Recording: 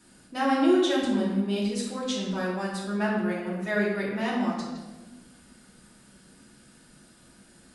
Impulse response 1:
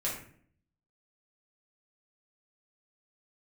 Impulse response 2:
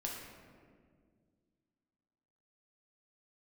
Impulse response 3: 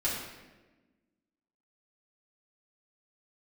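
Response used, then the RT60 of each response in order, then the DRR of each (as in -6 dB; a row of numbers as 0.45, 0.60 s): 3; 0.55, 1.9, 1.2 s; -6.5, -2.5, -8.5 dB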